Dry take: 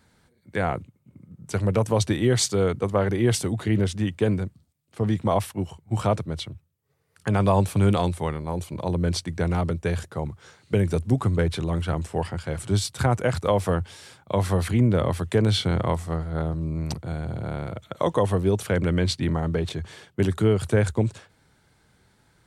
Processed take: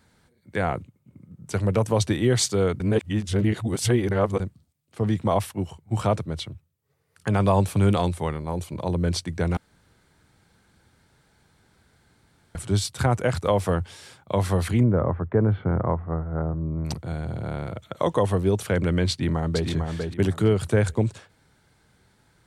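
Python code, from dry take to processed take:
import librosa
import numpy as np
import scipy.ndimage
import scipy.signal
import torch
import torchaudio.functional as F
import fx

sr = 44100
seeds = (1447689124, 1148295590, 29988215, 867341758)

y = fx.lowpass(x, sr, hz=1500.0, slope=24, at=(14.83, 16.85))
y = fx.echo_throw(y, sr, start_s=19.1, length_s=0.58, ms=450, feedback_pct=25, wet_db=-4.5)
y = fx.edit(y, sr, fx.reverse_span(start_s=2.8, length_s=1.6),
    fx.room_tone_fill(start_s=9.57, length_s=2.98), tone=tone)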